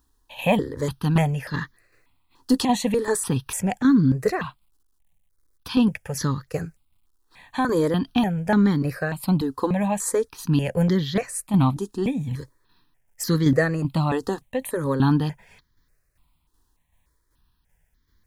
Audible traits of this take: a quantiser's noise floor 12-bit, dither none; tremolo saw down 2.6 Hz, depth 50%; notches that jump at a steady rate 3.4 Hz 600–2600 Hz

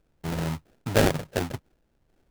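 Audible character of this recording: a quantiser's noise floor 12-bit, dither none; phasing stages 12, 2.2 Hz, lowest notch 680–2600 Hz; aliases and images of a low sample rate 1.1 kHz, jitter 20%

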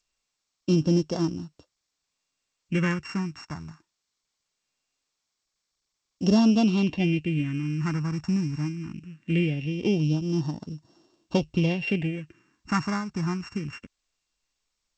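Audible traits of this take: a buzz of ramps at a fixed pitch in blocks of 16 samples; phasing stages 4, 0.21 Hz, lowest notch 510–2400 Hz; G.722

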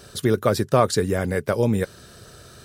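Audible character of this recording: noise floor -47 dBFS; spectral tilt -6.0 dB/octave

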